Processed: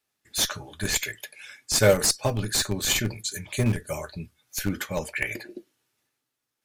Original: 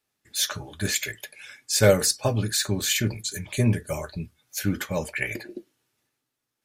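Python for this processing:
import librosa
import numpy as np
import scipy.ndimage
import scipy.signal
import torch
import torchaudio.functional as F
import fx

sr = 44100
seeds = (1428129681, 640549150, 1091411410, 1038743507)

p1 = fx.schmitt(x, sr, flips_db=-17.5)
p2 = x + (p1 * 10.0 ** (-4.0 / 20.0))
y = fx.low_shelf(p2, sr, hz=430.0, db=-4.0)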